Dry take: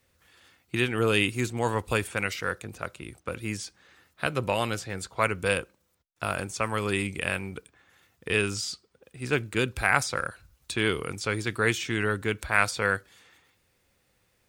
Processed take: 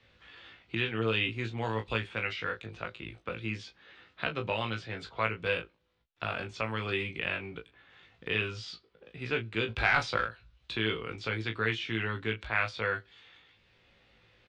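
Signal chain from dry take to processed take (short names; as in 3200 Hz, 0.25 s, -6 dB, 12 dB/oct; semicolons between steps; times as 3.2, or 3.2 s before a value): 9.68–10.25 sample leveller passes 2; ladder low-pass 4100 Hz, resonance 40%; on a send: early reflections 18 ms -4.5 dB, 36 ms -10 dB; on the sum: three-band squash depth 40%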